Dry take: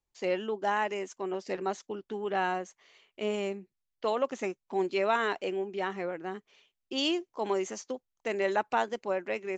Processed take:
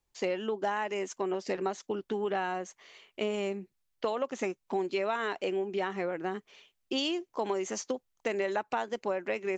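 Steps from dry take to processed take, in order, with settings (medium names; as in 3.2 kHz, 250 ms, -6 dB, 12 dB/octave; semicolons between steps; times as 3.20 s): compression, threshold -34 dBFS, peak gain reduction 11.5 dB; trim +6 dB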